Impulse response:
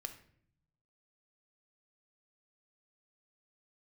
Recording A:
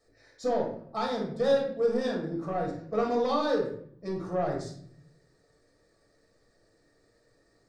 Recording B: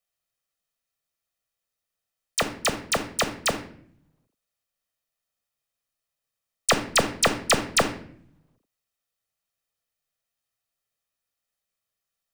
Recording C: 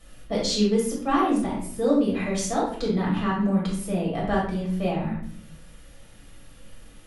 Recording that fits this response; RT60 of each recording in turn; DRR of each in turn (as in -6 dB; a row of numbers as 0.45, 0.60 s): B; 0.60, 0.60, 0.60 s; -2.0, 7.0, -6.0 dB